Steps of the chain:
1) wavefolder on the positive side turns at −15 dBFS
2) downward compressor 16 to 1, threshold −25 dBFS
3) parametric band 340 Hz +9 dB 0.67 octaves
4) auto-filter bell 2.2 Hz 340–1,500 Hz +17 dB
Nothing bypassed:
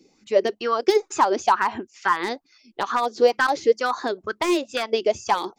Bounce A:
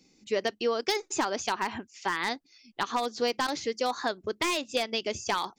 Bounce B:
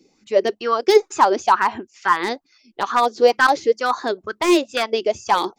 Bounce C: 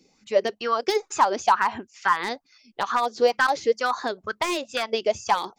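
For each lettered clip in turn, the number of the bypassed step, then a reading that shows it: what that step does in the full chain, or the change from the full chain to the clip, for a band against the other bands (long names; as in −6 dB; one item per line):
4, 8 kHz band +7.0 dB
2, average gain reduction 2.5 dB
3, 250 Hz band −6.0 dB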